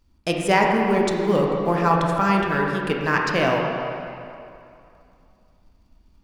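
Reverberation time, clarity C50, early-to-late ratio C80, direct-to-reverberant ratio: 2.6 s, 0.5 dB, 2.0 dB, −1.0 dB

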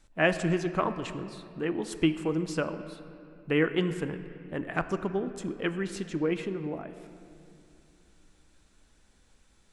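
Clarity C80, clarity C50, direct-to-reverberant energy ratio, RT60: 12.0 dB, 11.0 dB, 10.0 dB, 2.6 s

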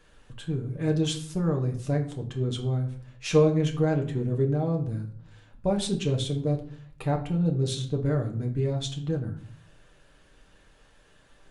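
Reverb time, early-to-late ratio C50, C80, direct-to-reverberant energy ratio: 0.55 s, 10.5 dB, 15.0 dB, 1.5 dB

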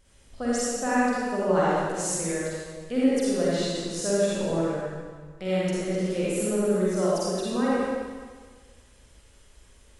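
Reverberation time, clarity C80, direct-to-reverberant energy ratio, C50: 1.6 s, −3.0 dB, −8.5 dB, −7.0 dB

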